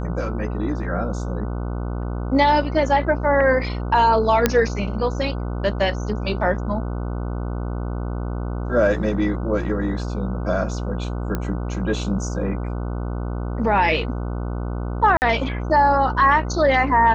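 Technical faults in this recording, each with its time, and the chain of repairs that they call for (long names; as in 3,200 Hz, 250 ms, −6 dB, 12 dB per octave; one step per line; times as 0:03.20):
mains buzz 60 Hz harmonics 25 −26 dBFS
0:04.46: click −1 dBFS
0:11.35: click −11 dBFS
0:15.17–0:15.22: drop-out 49 ms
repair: click removal
hum removal 60 Hz, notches 25
repair the gap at 0:15.17, 49 ms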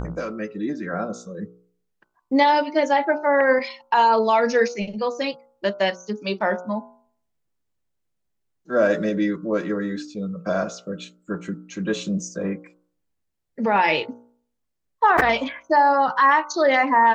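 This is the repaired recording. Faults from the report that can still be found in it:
0:11.35: click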